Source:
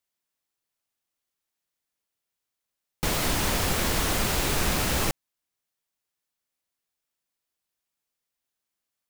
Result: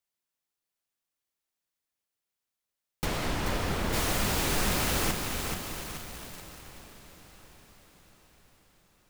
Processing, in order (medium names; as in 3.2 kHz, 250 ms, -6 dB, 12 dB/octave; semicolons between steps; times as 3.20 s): 3.04–3.92 s: low-pass 3.7 kHz -> 1.5 kHz 6 dB/octave; echo that smears into a reverb 694 ms, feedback 52%, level -11 dB; bit-crushed delay 432 ms, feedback 55%, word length 6-bit, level -4.5 dB; trim -3.5 dB